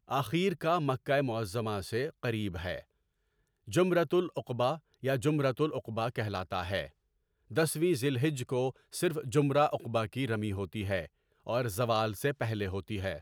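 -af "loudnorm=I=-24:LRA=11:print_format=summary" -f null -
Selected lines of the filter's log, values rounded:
Input Integrated:    -32.2 LUFS
Input True Peak:     -15.6 dBTP
Input LRA:             2.2 LU
Input Threshold:     -42.5 LUFS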